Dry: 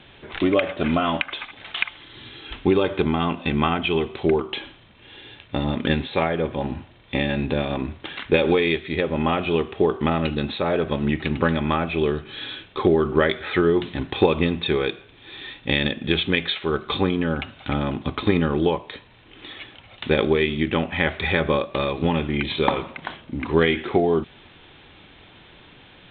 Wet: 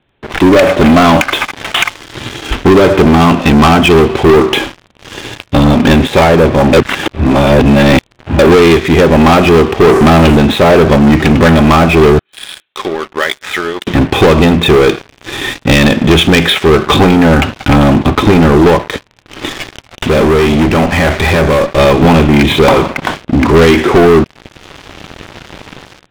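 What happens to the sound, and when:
6.73–8.39 s: reverse
9.87–10.37 s: jump at every zero crossing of -30.5 dBFS
12.19–13.87 s: differentiator
19.49–21.78 s: valve stage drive 31 dB, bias 0.65
whole clip: low-pass 1.6 kHz 6 dB/octave; level rider gain up to 8 dB; waveshaping leveller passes 5

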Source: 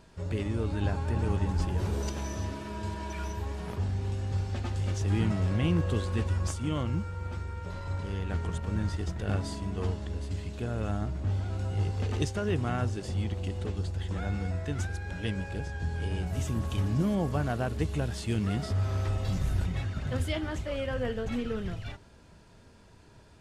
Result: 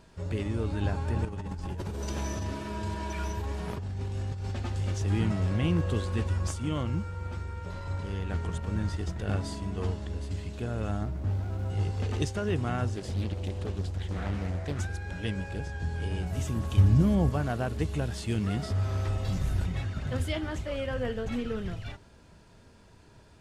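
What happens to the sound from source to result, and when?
1.25–4.56 s: compressor with a negative ratio -33 dBFS
11.03–11.70 s: median filter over 15 samples
12.95–14.80 s: loudspeaker Doppler distortion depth 0.6 ms
16.77–17.30 s: peaking EQ 68 Hz +12 dB 2.1 oct

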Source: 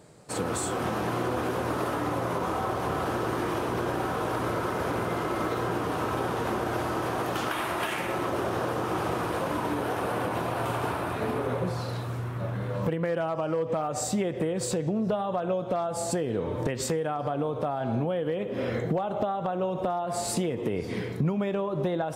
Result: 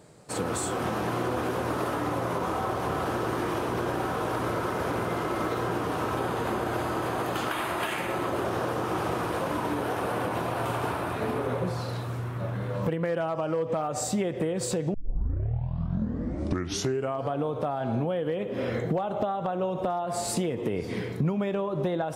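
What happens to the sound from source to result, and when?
6.18–8.45 s: band-stop 5.6 kHz, Q 9.9
14.94 s: tape start 2.41 s

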